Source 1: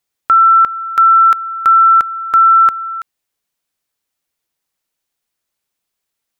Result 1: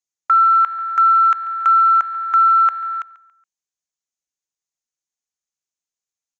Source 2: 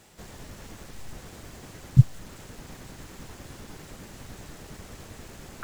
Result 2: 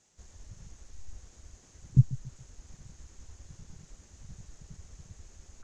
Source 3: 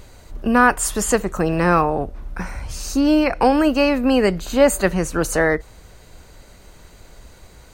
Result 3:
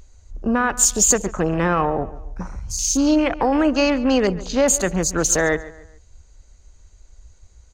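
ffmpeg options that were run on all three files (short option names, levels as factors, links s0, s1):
-filter_complex "[0:a]alimiter=limit=0.398:level=0:latency=1:release=40,lowpass=f=6600:t=q:w=6,afwtdn=0.0355,asplit=2[s0][s1];[s1]adelay=140,lowpass=f=4000:p=1,volume=0.141,asplit=2[s2][s3];[s3]adelay=140,lowpass=f=4000:p=1,volume=0.38,asplit=2[s4][s5];[s5]adelay=140,lowpass=f=4000:p=1,volume=0.38[s6];[s2][s4][s6]amix=inputs=3:normalize=0[s7];[s0][s7]amix=inputs=2:normalize=0,volume=0.891"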